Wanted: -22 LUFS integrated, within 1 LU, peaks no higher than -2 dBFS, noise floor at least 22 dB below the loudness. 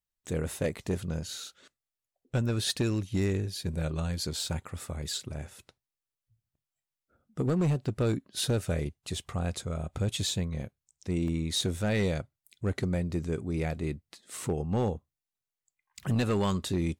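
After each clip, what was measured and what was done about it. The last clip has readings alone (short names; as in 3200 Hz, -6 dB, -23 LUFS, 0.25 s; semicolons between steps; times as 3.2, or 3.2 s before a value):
clipped 1.1%; flat tops at -21.5 dBFS; dropouts 1; longest dropout 1.7 ms; loudness -31.5 LUFS; peak -21.5 dBFS; loudness target -22.0 LUFS
-> clip repair -21.5 dBFS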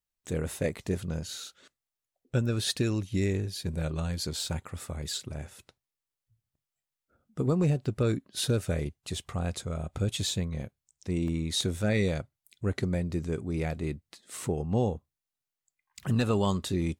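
clipped 0.0%; dropouts 1; longest dropout 1.7 ms
-> interpolate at 11.28, 1.7 ms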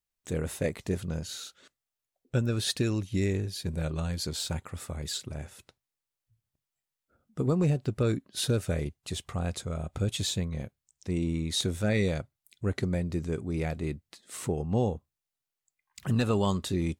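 dropouts 0; loudness -31.0 LUFS; peak -12.5 dBFS; loudness target -22.0 LUFS
-> gain +9 dB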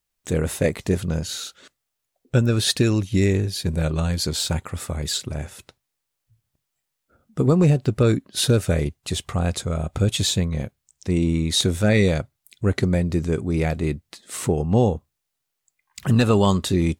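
loudness -22.0 LUFS; peak -3.5 dBFS; noise floor -80 dBFS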